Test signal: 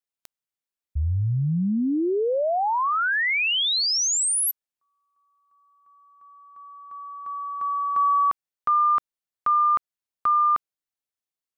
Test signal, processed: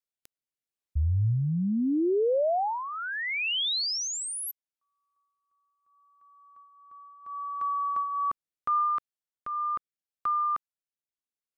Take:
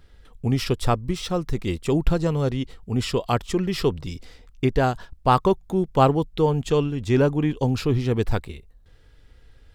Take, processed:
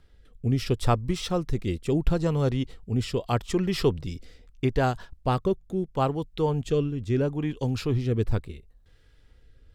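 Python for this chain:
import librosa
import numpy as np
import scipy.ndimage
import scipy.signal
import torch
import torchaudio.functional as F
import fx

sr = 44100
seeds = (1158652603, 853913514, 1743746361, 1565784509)

y = fx.dynamic_eq(x, sr, hz=110.0, q=3.5, threshold_db=-36.0, ratio=4.0, max_db=3)
y = fx.rider(y, sr, range_db=4, speed_s=0.5)
y = fx.rotary(y, sr, hz=0.75)
y = y * librosa.db_to_amplitude(-2.5)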